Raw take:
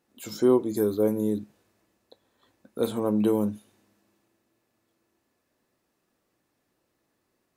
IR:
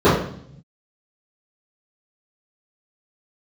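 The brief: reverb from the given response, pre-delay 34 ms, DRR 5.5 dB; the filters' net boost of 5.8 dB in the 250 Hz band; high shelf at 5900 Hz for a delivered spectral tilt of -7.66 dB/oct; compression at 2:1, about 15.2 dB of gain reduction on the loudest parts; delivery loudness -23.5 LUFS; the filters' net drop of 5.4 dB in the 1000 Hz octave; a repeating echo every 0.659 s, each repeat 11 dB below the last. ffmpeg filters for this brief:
-filter_complex "[0:a]equalizer=f=250:t=o:g=8,equalizer=f=1k:t=o:g=-7,highshelf=f=5.9k:g=-5,acompressor=threshold=-40dB:ratio=2,aecho=1:1:659|1318|1977:0.282|0.0789|0.0221,asplit=2[a][b];[1:a]atrim=start_sample=2205,adelay=34[c];[b][c]afir=irnorm=-1:irlink=0,volume=-32.5dB[d];[a][d]amix=inputs=2:normalize=0,volume=9dB"

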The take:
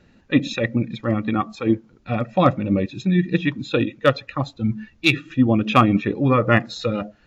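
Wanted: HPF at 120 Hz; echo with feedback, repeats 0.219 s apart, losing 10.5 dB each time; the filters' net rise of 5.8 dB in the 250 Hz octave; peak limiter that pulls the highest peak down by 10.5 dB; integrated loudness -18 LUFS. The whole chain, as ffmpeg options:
-af "highpass=120,equalizer=f=250:t=o:g=7.5,alimiter=limit=-9.5dB:level=0:latency=1,aecho=1:1:219|438|657:0.299|0.0896|0.0269,volume=3dB"

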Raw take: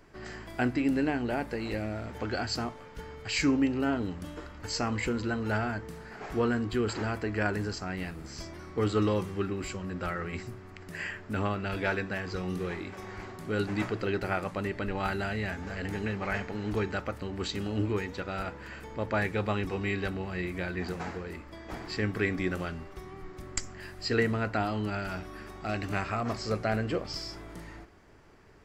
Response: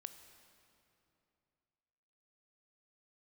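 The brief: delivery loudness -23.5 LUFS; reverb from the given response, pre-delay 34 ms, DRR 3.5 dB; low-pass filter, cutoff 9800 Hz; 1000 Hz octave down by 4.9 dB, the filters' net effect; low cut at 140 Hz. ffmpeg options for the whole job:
-filter_complex "[0:a]highpass=140,lowpass=9.8k,equalizer=f=1k:t=o:g=-7.5,asplit=2[a][b];[1:a]atrim=start_sample=2205,adelay=34[c];[b][c]afir=irnorm=-1:irlink=0,volume=1.5dB[d];[a][d]amix=inputs=2:normalize=0,volume=9dB"

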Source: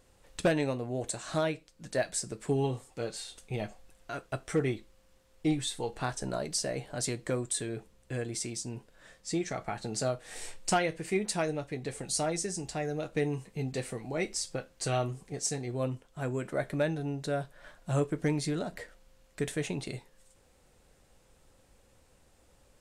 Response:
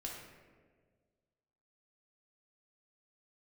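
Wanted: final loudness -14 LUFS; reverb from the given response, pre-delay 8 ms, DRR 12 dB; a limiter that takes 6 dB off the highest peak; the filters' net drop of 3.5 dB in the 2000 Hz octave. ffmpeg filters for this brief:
-filter_complex "[0:a]equalizer=f=2k:t=o:g=-4.5,alimiter=level_in=1dB:limit=-24dB:level=0:latency=1,volume=-1dB,asplit=2[a][b];[1:a]atrim=start_sample=2205,adelay=8[c];[b][c]afir=irnorm=-1:irlink=0,volume=-11dB[d];[a][d]amix=inputs=2:normalize=0,volume=22dB"

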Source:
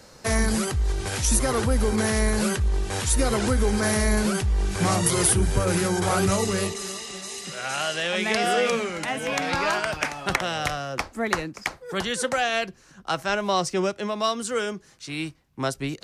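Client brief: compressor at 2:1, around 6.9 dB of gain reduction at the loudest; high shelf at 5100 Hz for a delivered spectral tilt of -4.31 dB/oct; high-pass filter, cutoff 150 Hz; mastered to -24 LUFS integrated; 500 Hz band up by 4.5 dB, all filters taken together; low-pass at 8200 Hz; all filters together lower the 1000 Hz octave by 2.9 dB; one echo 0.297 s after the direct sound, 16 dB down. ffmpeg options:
-af "highpass=150,lowpass=8.2k,equalizer=f=500:t=o:g=7.5,equalizer=f=1k:t=o:g=-7.5,highshelf=f=5.1k:g=-7,acompressor=threshold=-29dB:ratio=2,aecho=1:1:297:0.158,volume=6dB"

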